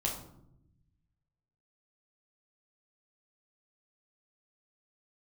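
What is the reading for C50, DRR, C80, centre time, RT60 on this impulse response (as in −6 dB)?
6.0 dB, −2.0 dB, 9.5 dB, 30 ms, 0.75 s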